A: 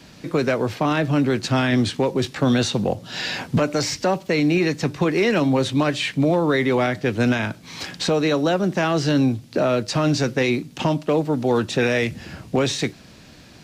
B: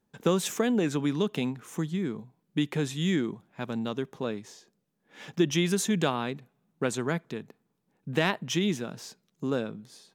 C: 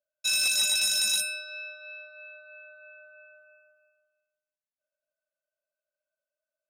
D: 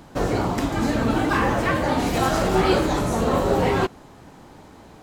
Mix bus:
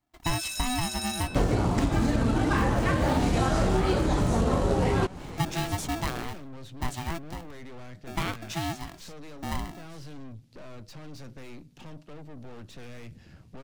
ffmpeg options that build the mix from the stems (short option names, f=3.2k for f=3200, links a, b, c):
-filter_complex "[0:a]aeval=exprs='(tanh(25.1*val(0)+0.45)-tanh(0.45))/25.1':c=same,adelay=1000,volume=-17.5dB[a];[1:a]highpass=140,aeval=exprs='val(0)*sgn(sin(2*PI*500*n/s))':c=same,volume=-6.5dB[b];[2:a]volume=-10dB[c];[3:a]acrusher=bits=4:mode=log:mix=0:aa=0.000001,lowpass=f=10k:w=0.5412,lowpass=f=10k:w=1.3066,adelay=1200,volume=1.5dB[d];[a][b][c][d]amix=inputs=4:normalize=0,lowshelf=f=170:g=10.5,acompressor=threshold=-20dB:ratio=12"